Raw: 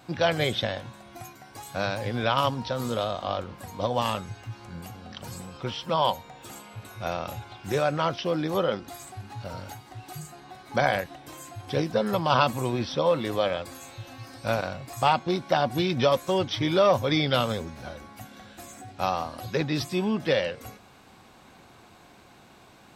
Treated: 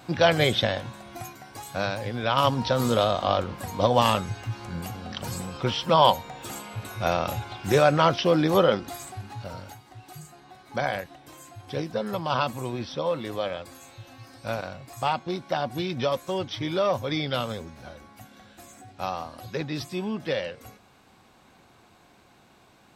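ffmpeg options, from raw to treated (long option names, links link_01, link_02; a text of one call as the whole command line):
ffmpeg -i in.wav -af "volume=12.5dB,afade=type=out:start_time=1.2:duration=1.02:silence=0.473151,afade=type=in:start_time=2.22:duration=0.42:silence=0.375837,afade=type=out:start_time=8.57:duration=1.2:silence=0.316228" out.wav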